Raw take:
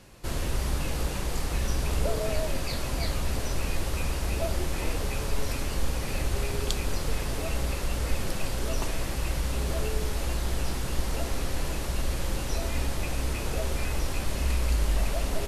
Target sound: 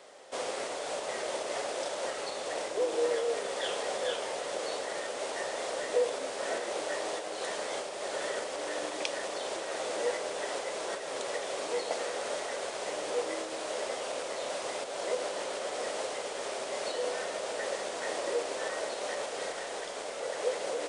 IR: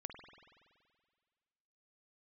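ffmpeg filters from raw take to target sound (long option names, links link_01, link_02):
-af "acompressor=threshold=-25dB:ratio=6,highpass=frequency=750:width_type=q:width=4.1,asetrate=32667,aresample=44100"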